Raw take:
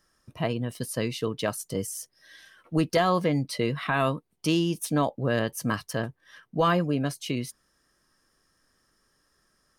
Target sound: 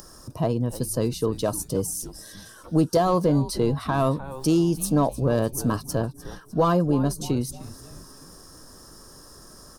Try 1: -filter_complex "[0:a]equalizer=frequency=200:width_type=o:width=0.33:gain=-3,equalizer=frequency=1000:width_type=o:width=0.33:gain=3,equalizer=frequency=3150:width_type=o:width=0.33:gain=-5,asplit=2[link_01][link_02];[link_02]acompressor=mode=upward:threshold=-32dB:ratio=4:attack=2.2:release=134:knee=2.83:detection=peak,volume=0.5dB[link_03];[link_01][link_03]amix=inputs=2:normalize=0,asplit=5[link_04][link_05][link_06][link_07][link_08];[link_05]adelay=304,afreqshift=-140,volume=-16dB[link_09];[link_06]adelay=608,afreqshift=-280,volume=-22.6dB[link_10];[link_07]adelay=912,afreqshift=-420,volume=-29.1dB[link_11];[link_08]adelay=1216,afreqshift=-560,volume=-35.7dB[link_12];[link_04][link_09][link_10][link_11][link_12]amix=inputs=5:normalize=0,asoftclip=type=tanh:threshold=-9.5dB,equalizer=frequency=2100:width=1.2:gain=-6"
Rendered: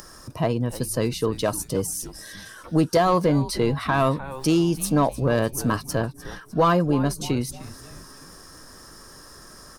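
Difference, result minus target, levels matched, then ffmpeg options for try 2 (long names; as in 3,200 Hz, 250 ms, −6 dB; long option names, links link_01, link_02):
2,000 Hz band +6.5 dB
-filter_complex "[0:a]equalizer=frequency=200:width_type=o:width=0.33:gain=-3,equalizer=frequency=1000:width_type=o:width=0.33:gain=3,equalizer=frequency=3150:width_type=o:width=0.33:gain=-5,asplit=2[link_01][link_02];[link_02]acompressor=mode=upward:threshold=-32dB:ratio=4:attack=2.2:release=134:knee=2.83:detection=peak,volume=0.5dB[link_03];[link_01][link_03]amix=inputs=2:normalize=0,asplit=5[link_04][link_05][link_06][link_07][link_08];[link_05]adelay=304,afreqshift=-140,volume=-16dB[link_09];[link_06]adelay=608,afreqshift=-280,volume=-22.6dB[link_10];[link_07]adelay=912,afreqshift=-420,volume=-29.1dB[link_11];[link_08]adelay=1216,afreqshift=-560,volume=-35.7dB[link_12];[link_04][link_09][link_10][link_11][link_12]amix=inputs=5:normalize=0,asoftclip=type=tanh:threshold=-9.5dB,equalizer=frequency=2100:width=1.2:gain=-17.5"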